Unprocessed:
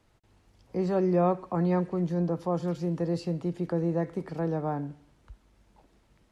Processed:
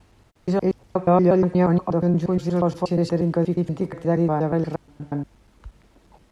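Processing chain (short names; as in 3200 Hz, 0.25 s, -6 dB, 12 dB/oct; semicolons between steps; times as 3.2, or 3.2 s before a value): slices in reverse order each 0.119 s, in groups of 4; gain +8 dB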